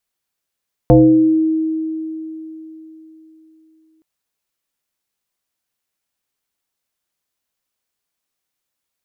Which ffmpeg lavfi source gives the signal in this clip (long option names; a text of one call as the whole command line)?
ffmpeg -f lavfi -i "aevalsrc='0.631*pow(10,-3*t/3.72)*sin(2*PI*318*t+1.8*pow(10,-3*t/0.81)*sin(2*PI*0.59*318*t))':duration=3.12:sample_rate=44100" out.wav